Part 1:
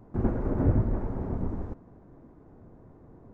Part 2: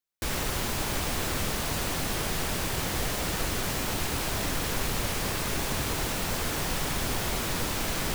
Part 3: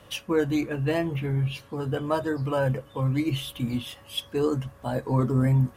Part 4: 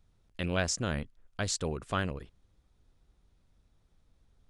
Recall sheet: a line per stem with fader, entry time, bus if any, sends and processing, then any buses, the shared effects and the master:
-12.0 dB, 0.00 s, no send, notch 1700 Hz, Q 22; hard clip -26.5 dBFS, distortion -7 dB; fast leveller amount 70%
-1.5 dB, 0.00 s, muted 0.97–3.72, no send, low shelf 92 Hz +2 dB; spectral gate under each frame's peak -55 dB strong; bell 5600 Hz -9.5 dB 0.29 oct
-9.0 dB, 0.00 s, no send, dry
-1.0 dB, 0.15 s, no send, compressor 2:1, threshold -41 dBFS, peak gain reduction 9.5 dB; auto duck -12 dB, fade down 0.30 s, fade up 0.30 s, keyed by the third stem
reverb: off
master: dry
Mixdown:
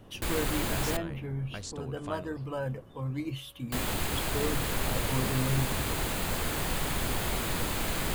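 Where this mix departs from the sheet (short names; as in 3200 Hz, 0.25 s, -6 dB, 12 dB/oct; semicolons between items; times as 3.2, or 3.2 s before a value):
stem 1 -12.0 dB -> -18.5 dB; stem 4 -1.0 dB -> +10.0 dB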